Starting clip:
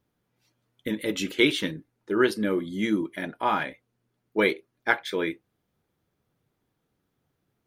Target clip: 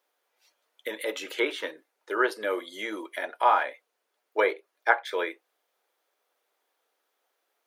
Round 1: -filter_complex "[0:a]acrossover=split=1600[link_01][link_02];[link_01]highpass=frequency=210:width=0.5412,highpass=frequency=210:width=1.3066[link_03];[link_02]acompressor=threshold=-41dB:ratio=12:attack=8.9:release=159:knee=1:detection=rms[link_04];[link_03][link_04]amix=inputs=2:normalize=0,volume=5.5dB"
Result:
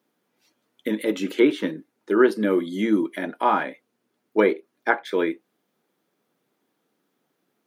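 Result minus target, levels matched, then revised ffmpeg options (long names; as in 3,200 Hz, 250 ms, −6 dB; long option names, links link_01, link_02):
250 Hz band +11.0 dB
-filter_complex "[0:a]acrossover=split=1600[link_01][link_02];[link_01]highpass=frequency=520:width=0.5412,highpass=frequency=520:width=1.3066[link_03];[link_02]acompressor=threshold=-41dB:ratio=12:attack=8.9:release=159:knee=1:detection=rms[link_04];[link_03][link_04]amix=inputs=2:normalize=0,volume=5.5dB"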